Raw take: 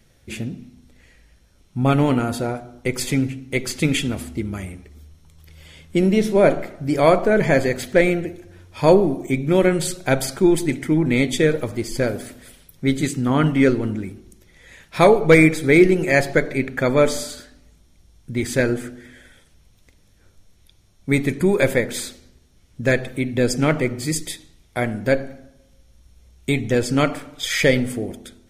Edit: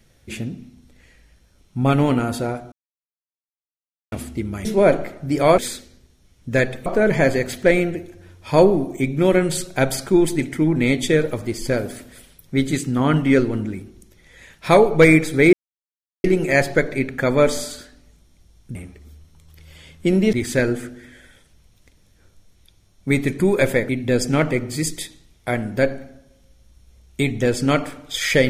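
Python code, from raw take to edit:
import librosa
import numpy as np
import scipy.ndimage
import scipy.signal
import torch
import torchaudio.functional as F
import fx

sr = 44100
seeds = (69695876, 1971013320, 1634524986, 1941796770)

y = fx.edit(x, sr, fx.silence(start_s=2.72, length_s=1.4),
    fx.move(start_s=4.65, length_s=1.58, to_s=18.34),
    fx.insert_silence(at_s=15.83, length_s=0.71),
    fx.move(start_s=21.9, length_s=1.28, to_s=7.16), tone=tone)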